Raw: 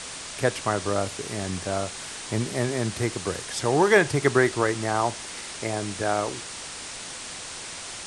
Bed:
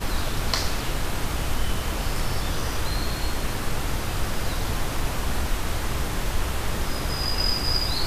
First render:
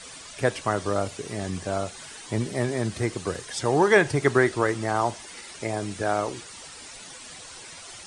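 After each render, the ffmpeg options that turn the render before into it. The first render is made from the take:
-af "afftdn=nr=11:nf=-38"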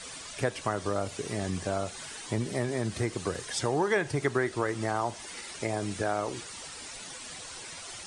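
-af "acompressor=threshold=0.0447:ratio=2.5"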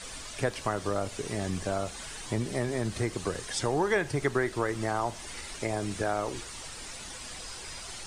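-filter_complex "[1:a]volume=0.0631[s0];[0:a][s0]amix=inputs=2:normalize=0"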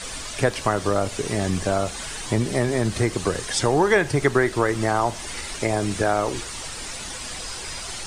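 -af "volume=2.66"

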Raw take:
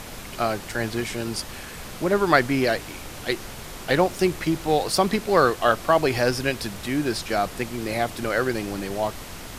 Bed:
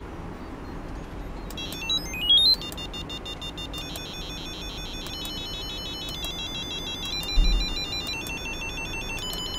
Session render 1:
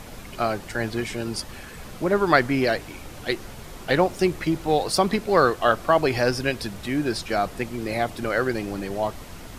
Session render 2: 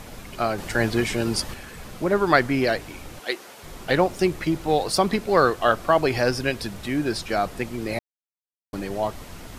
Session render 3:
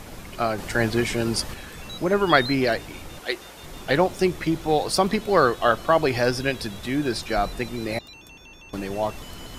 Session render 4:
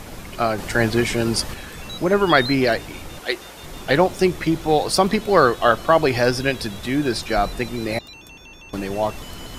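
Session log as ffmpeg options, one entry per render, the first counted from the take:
-af "afftdn=nr=6:nf=-38"
-filter_complex "[0:a]asettb=1/sr,asplit=3[s0][s1][s2];[s0]atrim=end=0.584[s3];[s1]atrim=start=0.58:end=1.54,asetpts=PTS-STARTPTS,afade=t=in:d=0.004:c=qsin,afade=t=out:st=0.956:d=0.004:c=qsin,acontrast=24[s4];[s2]atrim=start=1.536[s5];[s3][s4]acrossfade=d=0.004:c1=hsin:c2=qsin[s6];[s6][s5]acrossfade=d=0.004:c1=qsin:c2=hsin,asettb=1/sr,asplit=3[s7][s8][s9];[s7]atrim=end=3.194[s10];[s8]atrim=start=3.19:end=3.63,asetpts=PTS-STARTPTS,afade=t=in:d=0.004:c=qsin,afade=t=out:st=0.436:d=0.004:c=qsin,highpass=410[s11];[s9]atrim=start=3.626[s12];[s10][s11]acrossfade=d=0.004:c1=hsin:c2=qsin[s13];[s13][s12]acrossfade=d=0.004:c1=qsin:c2=hsin,asplit=3[s14][s15][s16];[s14]atrim=end=7.99,asetpts=PTS-STARTPTS,afade=t=out:st=7.986:d=0.004:c=hsin[s17];[s15]atrim=start=7.99:end=8.73,asetpts=PTS-STARTPTS,volume=0[s18];[s16]atrim=start=8.73,asetpts=PTS-STARTPTS,afade=t=in:d=0.004:c=hsin[s19];[s17][s18][s19]concat=n=3:v=0:a=1"
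-filter_complex "[1:a]volume=0.2[s0];[0:a][s0]amix=inputs=2:normalize=0"
-af "volume=1.5,alimiter=limit=0.891:level=0:latency=1"

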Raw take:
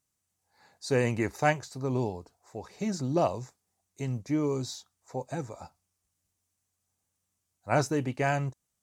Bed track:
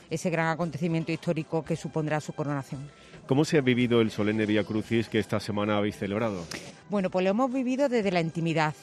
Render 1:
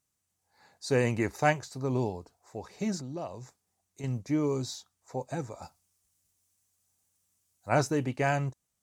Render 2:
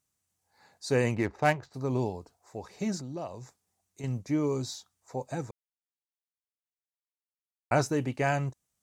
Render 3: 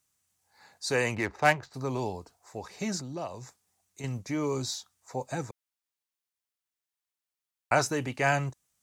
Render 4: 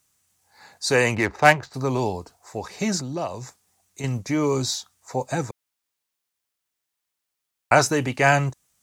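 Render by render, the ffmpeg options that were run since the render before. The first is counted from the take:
-filter_complex "[0:a]asettb=1/sr,asplit=3[s0][s1][s2];[s0]atrim=end=2.994[s3];[s1]atrim=start=2.99:end=4.04,asetpts=PTS-STARTPTS,afade=t=in:d=0.004:c=qsin,afade=t=out:st=1.046:d=0.004:c=qsin,acompressor=threshold=0.00708:ratio=2:attack=3.2:release=140:knee=1:detection=peak[s4];[s2]atrim=start=4.036[s5];[s3][s4]acrossfade=d=0.004:c1=hsin:c2=qsin[s6];[s6][s5]acrossfade=d=0.004:c1=qsin:c2=hsin,asettb=1/sr,asplit=3[s7][s8][s9];[s7]atrim=end=5.624[s10];[s8]atrim=start=5.62:end=7.69,asetpts=PTS-STARTPTS,afade=t=in:d=0.004:c=qsin,afade=t=out:st=2.066:d=0.004:c=qsin,highshelf=f=3800:g=8[s11];[s9]atrim=start=7.686[s12];[s10][s11]acrossfade=d=0.004:c1=hsin:c2=qsin[s13];[s13][s12]acrossfade=d=0.004:c1=qsin:c2=hsin"
-filter_complex "[0:a]asplit=3[s0][s1][s2];[s0]afade=t=out:st=1.14:d=0.02[s3];[s1]adynamicsmooth=sensitivity=7.5:basefreq=1700,afade=t=in:st=1.14:d=0.02,afade=t=out:st=1.73:d=0.02[s4];[s2]afade=t=in:st=1.73:d=0.02[s5];[s3][s4][s5]amix=inputs=3:normalize=0,asplit=3[s6][s7][s8];[s6]atrim=end=5.51,asetpts=PTS-STARTPTS,afade=t=out:st=5.506:d=0.004:c=hsin[s9];[s7]atrim=start=5.51:end=7.71,asetpts=PTS-STARTPTS,volume=0[s10];[s8]atrim=start=7.71,asetpts=PTS-STARTPTS,afade=t=in:d=0.004:c=hsin[s11];[s9][s10][s11]concat=n=3:v=0:a=1"
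-filter_complex "[0:a]acrossover=split=430|850[s0][s1][s2];[s0]alimiter=level_in=1.5:limit=0.0631:level=0:latency=1,volume=0.668[s3];[s2]acontrast=29[s4];[s3][s1][s4]amix=inputs=3:normalize=0"
-af "volume=2.51"

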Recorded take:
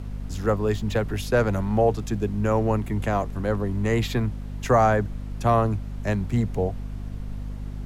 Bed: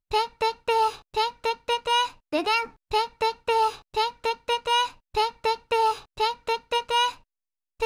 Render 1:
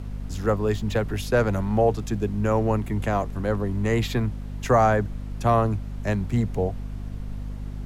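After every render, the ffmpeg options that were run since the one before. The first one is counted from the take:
-af anull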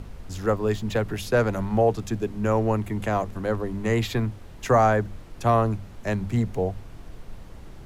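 -af "bandreject=f=50:t=h:w=6,bandreject=f=100:t=h:w=6,bandreject=f=150:t=h:w=6,bandreject=f=200:t=h:w=6,bandreject=f=250:t=h:w=6"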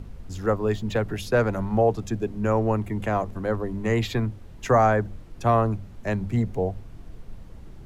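-af "afftdn=nr=6:nf=-43"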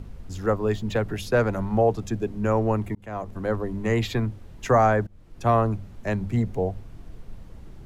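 -filter_complex "[0:a]asplit=3[s0][s1][s2];[s0]atrim=end=2.95,asetpts=PTS-STARTPTS,afade=t=out:st=2.946:d=0.004:c=hsin[s3];[s1]atrim=start=2.95:end=5.07,asetpts=PTS-STARTPTS,afade=t=in:d=0.5,afade=t=out:st=2.116:d=0.004:c=hsin:silence=0.0749894[s4];[s2]atrim=start=5.07,asetpts=PTS-STARTPTS,afade=t=in:d=0.42:silence=0.0749894[s5];[s3][s4][s5]concat=n=3:v=0:a=1"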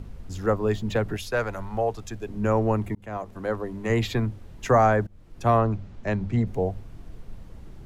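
-filter_complex "[0:a]asettb=1/sr,asplit=3[s0][s1][s2];[s0]atrim=end=1.174[s3];[s1]atrim=start=1.17:end=2.29,asetpts=PTS-STARTPTS,afade=t=in:d=0.004:c=qsin,afade=t=out:st=1.116:d=0.004:c=qsin,equalizer=f=200:w=0.47:g=-11[s4];[s2]atrim=start=2.286[s5];[s3][s4]acrossfade=d=0.004:c1=hsin:c2=qsin[s6];[s6][s5]acrossfade=d=0.004:c1=qsin:c2=hsin,asettb=1/sr,asplit=3[s7][s8][s9];[s7]atrim=end=3.174[s10];[s8]atrim=start=3.17:end=3.9,asetpts=PTS-STARTPTS,afade=t=in:d=0.004:c=qsin,afade=t=out:st=0.726:d=0.004:c=qsin,lowshelf=f=220:g=-8[s11];[s9]atrim=start=3.896[s12];[s10][s11]acrossfade=d=0.004:c1=hsin:c2=qsin[s13];[s13][s12]acrossfade=d=0.004:c1=qsin:c2=hsin,asettb=1/sr,asplit=3[s14][s15][s16];[s14]atrim=end=5.584[s17];[s15]atrim=start=5.58:end=6.47,asetpts=PTS-STARTPTS,afade=t=in:d=0.004:c=qsin,afade=t=out:st=0.886:d=0.004:c=qsin,lowpass=5900[s18];[s16]atrim=start=6.466[s19];[s17][s18]acrossfade=d=0.004:c1=hsin:c2=qsin[s20];[s20][s19]acrossfade=d=0.004:c1=qsin:c2=hsin"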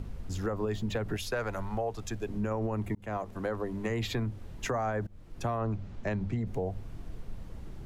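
-af "alimiter=limit=0.119:level=0:latency=1:release=54,acompressor=threshold=0.0316:ratio=2.5"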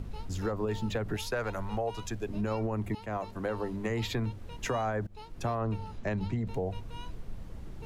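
-filter_complex "[1:a]volume=0.0531[s0];[0:a][s0]amix=inputs=2:normalize=0"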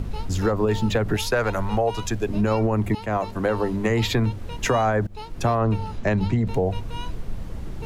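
-af "volume=3.35"

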